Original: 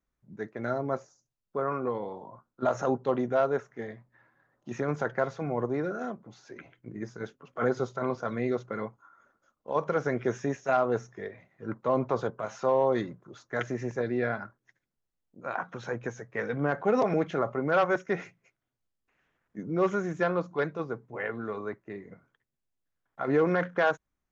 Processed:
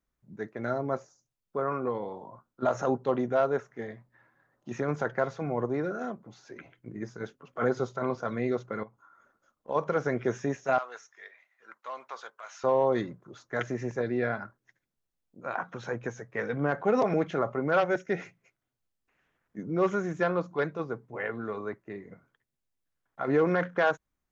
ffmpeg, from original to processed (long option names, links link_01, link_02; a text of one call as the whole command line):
ffmpeg -i in.wav -filter_complex "[0:a]asettb=1/sr,asplit=3[link_01][link_02][link_03];[link_01]atrim=end=8.834[link_04];[link_02]atrim=start=8.83:end=9.69,asetpts=PTS-STARTPTS,afade=type=in:duration=0.004:curve=qsin,afade=type=out:start_time=0.856:duration=0.004:curve=qsin,acompressor=threshold=-54dB:ratio=2:attack=3.2:release=140:knee=1:detection=peak[link_05];[link_03]atrim=start=9.686[link_06];[link_04][link_05]acrossfade=duration=0.004:curve1=hsin:curve2=qsin[link_07];[link_07][link_06]acrossfade=duration=0.004:curve1=qsin:curve2=hsin,asettb=1/sr,asplit=3[link_08][link_09][link_10];[link_08]atrim=end=10.784[link_11];[link_09]atrim=start=10.78:end=12.64,asetpts=PTS-STARTPTS,afade=type=in:duration=0.004:curve=qsin,afade=type=out:start_time=1.856:duration=0.004:curve=qsin,highpass=1500[link_12];[link_10]atrim=start=12.636[link_13];[link_11][link_12]acrossfade=duration=0.004:curve1=hsin:curve2=qsin[link_14];[link_14][link_13]acrossfade=duration=0.004:curve1=qsin:curve2=hsin,asettb=1/sr,asplit=3[link_15][link_16][link_17];[link_15]atrim=end=17.804[link_18];[link_16]atrim=start=17.8:end=18.21,asetpts=PTS-STARTPTS,afade=type=in:duration=0.004:curve=qsin,afade=type=out:start_time=0.406:duration=0.004:curve=qsin,equalizer=frequency=1100:width=3.7:gain=-13[link_19];[link_17]atrim=start=18.206[link_20];[link_18][link_19]acrossfade=duration=0.004:curve1=hsin:curve2=qsin[link_21];[link_21][link_20]acrossfade=duration=0.004:curve1=qsin:curve2=hsin" out.wav